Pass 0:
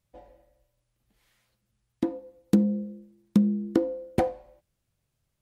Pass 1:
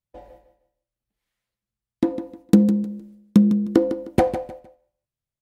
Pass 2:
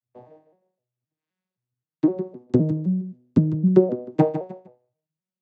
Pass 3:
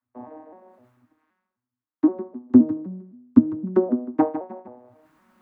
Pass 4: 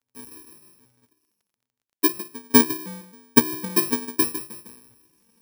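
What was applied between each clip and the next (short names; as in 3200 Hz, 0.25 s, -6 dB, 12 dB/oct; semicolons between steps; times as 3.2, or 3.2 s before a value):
gate -57 dBFS, range -20 dB; on a send: feedback echo 0.154 s, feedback 26%, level -11 dB; on the sum: gain +6.5 dB
arpeggiated vocoder major triad, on B2, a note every 0.259 s
EQ curve 110 Hz 0 dB, 160 Hz -24 dB, 240 Hz +14 dB, 340 Hz 0 dB, 490 Hz -4 dB, 1100 Hz +9 dB, 1700 Hz +3 dB, 3000 Hz -10 dB, 5300 Hz -16 dB; reverse; upward compressor, threshold -29 dBFS; reverse; gain -2.5 dB
FFT order left unsorted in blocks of 64 samples; crackle 21/s -52 dBFS; gain -2 dB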